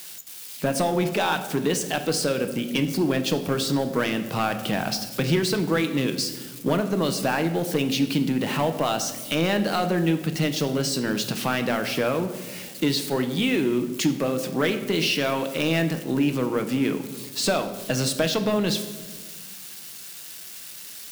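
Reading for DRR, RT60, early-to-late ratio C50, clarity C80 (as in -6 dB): 7.0 dB, 1.5 s, 10.5 dB, 12.5 dB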